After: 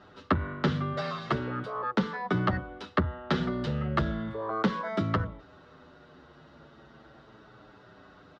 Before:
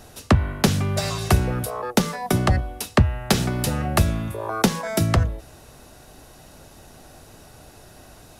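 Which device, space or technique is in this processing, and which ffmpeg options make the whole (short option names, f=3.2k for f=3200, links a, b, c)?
barber-pole flanger into a guitar amplifier: -filter_complex "[0:a]asettb=1/sr,asplit=3[a][b][c];[a]atrim=end=0.934[d];[b]atrim=start=0.93:end=1.74,asetpts=PTS-STARTPTS,afade=t=in:d=0.004:c=qsin,afade=t=out:st=0.806:d=0.004:c=qsin,highpass=160[e];[c]atrim=start=1.736[f];[d][e]acrossfade=d=0.004:c1=hsin:c2=qsin[g];[g][f]acrossfade=d=0.004:c1=qsin:c2=hsin,asplit=2[h][i];[i]adelay=7.7,afreqshift=-0.37[j];[h][j]amix=inputs=2:normalize=1,asoftclip=type=tanh:threshold=-14dB,highpass=94,equalizer=f=100:t=q:w=4:g=-9,equalizer=f=730:t=q:w=4:g=-7,equalizer=f=1.3k:t=q:w=4:g=7,equalizer=f=2.5k:t=q:w=4:g=-9,lowpass=f=3.5k:w=0.5412,lowpass=f=3.5k:w=1.3066,volume=-1dB"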